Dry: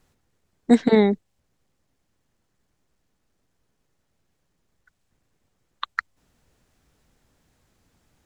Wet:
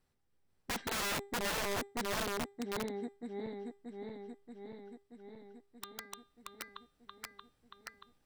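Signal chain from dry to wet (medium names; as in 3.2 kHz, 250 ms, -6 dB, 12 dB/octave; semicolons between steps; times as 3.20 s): backward echo that repeats 315 ms, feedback 81%, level -3.5 dB; band-stop 6.7 kHz, Q 5.4; feedback comb 400 Hz, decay 0.38 s, harmonics all, mix 70%; integer overflow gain 27 dB; trim -3.5 dB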